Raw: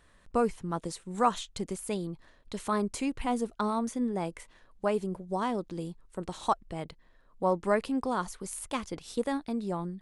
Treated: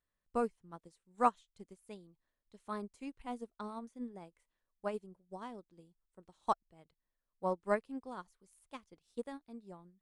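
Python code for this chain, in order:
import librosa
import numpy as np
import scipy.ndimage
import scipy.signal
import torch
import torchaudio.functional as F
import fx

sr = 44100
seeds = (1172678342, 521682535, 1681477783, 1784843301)

y = fx.upward_expand(x, sr, threshold_db=-38.0, expansion=2.5)
y = F.gain(torch.from_numpy(y), -2.0).numpy()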